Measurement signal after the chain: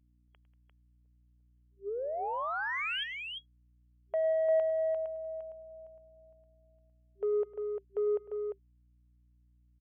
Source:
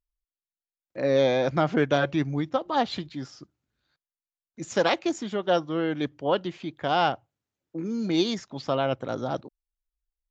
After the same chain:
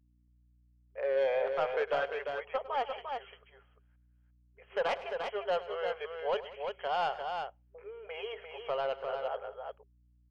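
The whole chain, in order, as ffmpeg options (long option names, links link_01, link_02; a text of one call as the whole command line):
ffmpeg -i in.wav -filter_complex "[0:a]afftfilt=real='re*between(b*sr/4096,390,3300)':imag='im*between(b*sr/4096,390,3300)':win_size=4096:overlap=0.75,aeval=exprs='val(0)+0.000891*(sin(2*PI*60*n/s)+sin(2*PI*2*60*n/s)/2+sin(2*PI*3*60*n/s)/3+sin(2*PI*4*60*n/s)/4+sin(2*PI*5*60*n/s)/5)':channel_layout=same,asoftclip=type=tanh:threshold=-18dB,asplit=2[link_01][link_02];[link_02]aecho=0:1:103|188|348:0.15|0.112|0.531[link_03];[link_01][link_03]amix=inputs=2:normalize=0,volume=-5.5dB" out.wav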